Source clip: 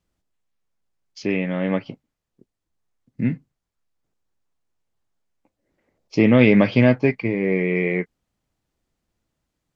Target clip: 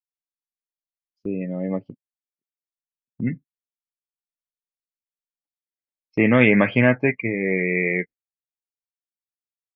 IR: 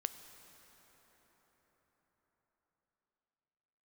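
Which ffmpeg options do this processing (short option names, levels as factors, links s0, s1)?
-af "asetnsamples=n=441:p=0,asendcmd='1.41 equalizer g -3.5;3.27 equalizer g 9',equalizer=f=1600:w=0.88:g=-15,afftdn=nr=24:nf=-29,agate=range=0.158:threshold=0.02:ratio=16:detection=peak,volume=0.708"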